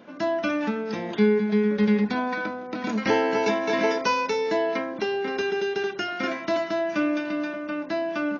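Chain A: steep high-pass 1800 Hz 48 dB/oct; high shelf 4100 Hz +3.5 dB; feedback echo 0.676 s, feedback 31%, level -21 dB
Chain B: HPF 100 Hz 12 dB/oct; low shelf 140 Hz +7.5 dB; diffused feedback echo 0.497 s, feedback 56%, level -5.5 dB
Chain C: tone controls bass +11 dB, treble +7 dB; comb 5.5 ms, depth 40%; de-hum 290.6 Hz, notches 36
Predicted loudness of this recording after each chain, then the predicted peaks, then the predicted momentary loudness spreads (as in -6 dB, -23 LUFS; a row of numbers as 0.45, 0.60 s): -34.5, -23.0, -21.0 LUFS; -16.5, -8.0, -2.5 dBFS; 10, 6, 13 LU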